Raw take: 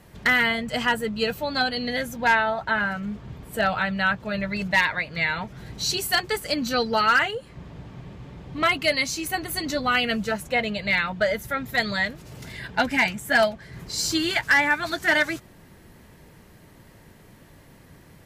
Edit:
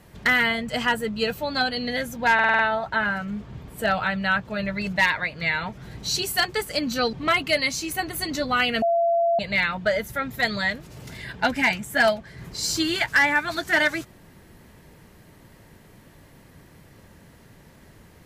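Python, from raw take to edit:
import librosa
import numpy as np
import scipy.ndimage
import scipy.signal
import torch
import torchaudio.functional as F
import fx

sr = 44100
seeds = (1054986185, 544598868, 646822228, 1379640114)

y = fx.edit(x, sr, fx.stutter(start_s=2.34, slice_s=0.05, count=6),
    fx.cut(start_s=6.88, length_s=1.6),
    fx.bleep(start_s=10.17, length_s=0.57, hz=679.0, db=-17.5), tone=tone)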